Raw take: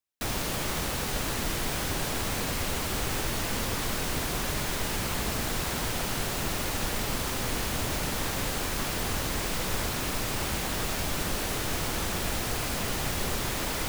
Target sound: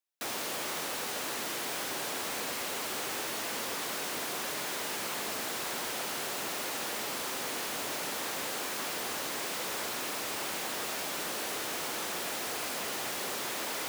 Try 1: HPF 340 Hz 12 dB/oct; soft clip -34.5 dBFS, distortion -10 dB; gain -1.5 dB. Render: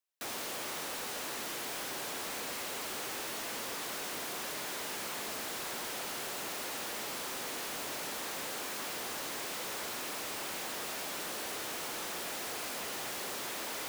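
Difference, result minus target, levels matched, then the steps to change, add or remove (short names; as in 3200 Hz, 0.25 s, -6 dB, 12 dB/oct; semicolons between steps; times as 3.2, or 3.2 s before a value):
soft clip: distortion +8 dB
change: soft clip -26.5 dBFS, distortion -18 dB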